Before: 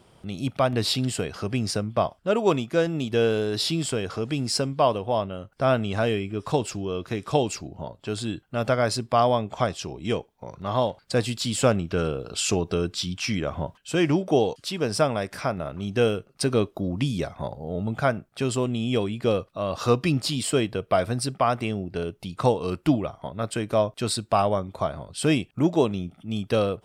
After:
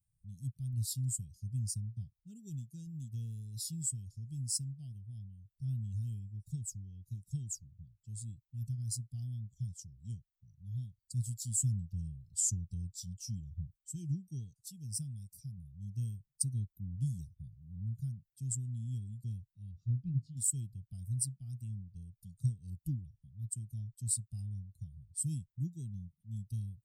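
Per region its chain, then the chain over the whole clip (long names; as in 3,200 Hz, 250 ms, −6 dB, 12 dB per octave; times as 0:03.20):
0:19.71–0:20.37: low-pass filter 2,000 Hz + mains-hum notches 50/100/150/200/250/300/350/400 Hz
whole clip: spectral dynamics exaggerated over time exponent 1.5; elliptic band-stop filter 130–7,500 Hz, stop band 60 dB; low-shelf EQ 180 Hz −6 dB; level +2 dB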